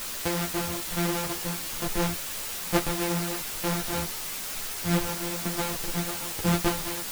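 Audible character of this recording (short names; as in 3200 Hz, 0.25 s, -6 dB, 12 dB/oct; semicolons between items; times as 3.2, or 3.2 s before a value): a buzz of ramps at a fixed pitch in blocks of 256 samples; tremolo saw down 1.1 Hz, depth 90%; a quantiser's noise floor 6-bit, dither triangular; a shimmering, thickened sound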